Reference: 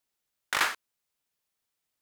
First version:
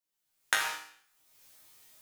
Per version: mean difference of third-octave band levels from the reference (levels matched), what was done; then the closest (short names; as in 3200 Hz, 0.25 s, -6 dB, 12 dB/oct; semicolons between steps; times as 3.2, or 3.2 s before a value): 4.5 dB: recorder AGC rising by 37 dB/s; high shelf 5200 Hz +5 dB; resonator bank G#2 major, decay 0.59 s; gain +7.5 dB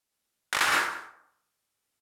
6.0 dB: LPF 12000 Hz 12 dB/oct; high shelf 9100 Hz +5 dB; on a send: echo 0.188 s -20 dB; on the sum: plate-style reverb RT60 0.68 s, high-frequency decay 0.5×, pre-delay 0.1 s, DRR -2 dB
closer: first